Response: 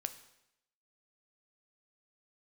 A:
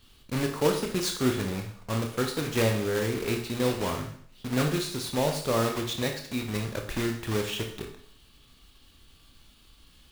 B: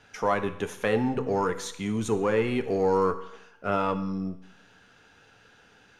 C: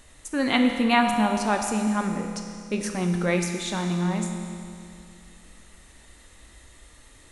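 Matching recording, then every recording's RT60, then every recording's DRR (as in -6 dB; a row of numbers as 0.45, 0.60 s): B; 0.60, 0.85, 2.5 s; 2.5, 9.0, 3.5 dB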